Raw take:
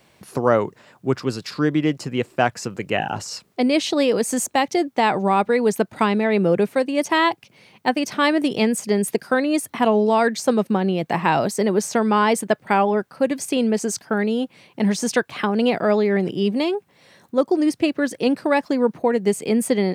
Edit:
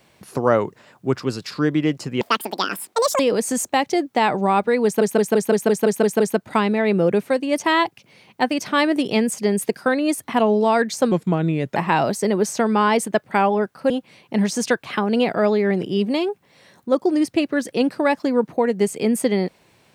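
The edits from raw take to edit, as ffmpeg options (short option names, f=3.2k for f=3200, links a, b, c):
-filter_complex "[0:a]asplit=14[a][b][c][d][e][f][g][h][i][j][k][l][m][n];[a]atrim=end=2.214[o];[b]atrim=start=2.21:end=4.01,asetpts=PTS-STARTPTS,asetrate=80703,aresample=44100,atrim=end_sample=43377,asetpts=PTS-STARTPTS[p];[c]atrim=start=4.006:end=5.832[q];[d]atrim=start=5.658:end=5.832[r];[e]atrim=start=5.658:end=5.832[s];[f]atrim=start=5.658:end=5.832[t];[g]atrim=start=5.658:end=5.832[u];[h]atrim=start=5.658:end=5.832[v];[i]atrim=start=5.658:end=5.832[w];[j]atrim=start=5.658:end=5.832[x];[k]atrim=start=5.658:end=10.574[y];[l]atrim=start=10.57:end=11.12,asetpts=PTS-STARTPTS,asetrate=37485,aresample=44100,atrim=end_sample=28535,asetpts=PTS-STARTPTS[z];[m]atrim=start=11.116:end=13.262[aa];[n]atrim=start=14.358[ab];[o][p]acrossfade=d=0.004:c1=hsin:c2=hsin[ac];[ac][q]acrossfade=d=0.004:c1=hsin:c2=hsin[ad];[ad][r]acrossfade=d=0.004:c1=hsin:c2=hsin[ae];[ae][s]acrossfade=d=0.004:c1=hsin:c2=hsin[af];[af][t]acrossfade=d=0.004:c1=hsin:c2=hsin[ag];[ag][u]acrossfade=d=0.004:c1=hsin:c2=hsin[ah];[ah][v]acrossfade=d=0.004:c1=hsin:c2=hsin[ai];[ai][w]acrossfade=d=0.004:c1=hsin:c2=hsin[aj];[aj][x]acrossfade=d=0.004:c1=hsin:c2=hsin[ak];[ak][y]acrossfade=d=0.004:c1=hsin:c2=hsin[al];[al][z]acrossfade=d=0.004:c1=hsin:c2=hsin[am];[am][aa]acrossfade=d=0.004:c1=hsin:c2=hsin[an];[an][ab]acrossfade=d=0.004:c1=hsin:c2=hsin"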